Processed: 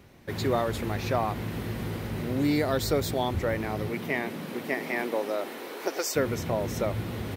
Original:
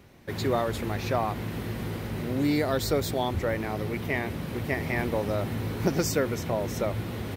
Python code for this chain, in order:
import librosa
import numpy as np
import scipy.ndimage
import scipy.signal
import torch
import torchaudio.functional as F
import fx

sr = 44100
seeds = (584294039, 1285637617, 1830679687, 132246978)

y = fx.highpass(x, sr, hz=fx.line((3.88, 130.0), (6.15, 460.0)), slope=24, at=(3.88, 6.15), fade=0.02)